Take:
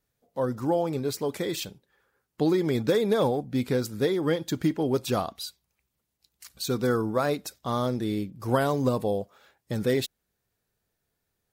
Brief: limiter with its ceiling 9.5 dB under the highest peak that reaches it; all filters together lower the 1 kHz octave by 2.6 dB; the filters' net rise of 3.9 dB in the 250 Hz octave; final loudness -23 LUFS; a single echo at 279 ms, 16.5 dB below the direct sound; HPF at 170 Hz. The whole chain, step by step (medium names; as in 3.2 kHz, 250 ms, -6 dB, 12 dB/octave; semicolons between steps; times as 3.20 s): high-pass 170 Hz; peaking EQ 250 Hz +6 dB; peaking EQ 1 kHz -4 dB; peak limiter -18 dBFS; delay 279 ms -16.5 dB; trim +5.5 dB